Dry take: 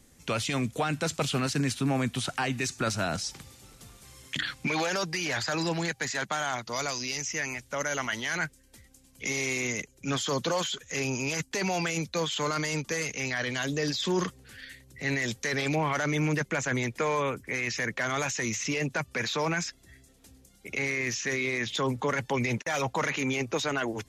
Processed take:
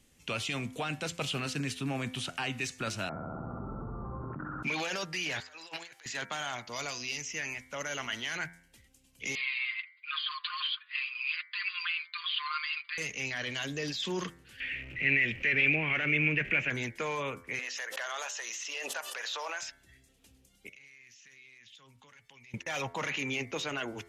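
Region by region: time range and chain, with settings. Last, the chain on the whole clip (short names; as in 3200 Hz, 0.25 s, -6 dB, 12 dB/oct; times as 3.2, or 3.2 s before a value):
3.09–4.63 rippled Chebyshev low-pass 1400 Hz, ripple 3 dB + flutter echo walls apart 11.3 m, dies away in 0.97 s + fast leveller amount 100%
5.4–6.06 HPF 590 Hz + negative-ratio compressor -40 dBFS, ratio -0.5
9.35–12.98 brick-wall FIR band-pass 1000–4900 Hz + comb 5.7 ms, depth 80%
14.6–16.7 zero-crossing step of -34.5 dBFS + EQ curve 440 Hz 0 dB, 980 Hz -9 dB, 1700 Hz +3 dB, 2500 Hz +12 dB, 3800 Hz -12 dB, 10000 Hz -28 dB
17.59–19.63 HPF 570 Hz 24 dB/oct + bell 2300 Hz -10.5 dB 0.34 oct + backwards sustainer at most 31 dB/s
20.69–22.54 passive tone stack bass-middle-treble 5-5-5 + compressor 10:1, threshold -48 dBFS
whole clip: bell 2800 Hz +8.5 dB 0.65 oct; de-hum 85.38 Hz, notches 27; gain -7 dB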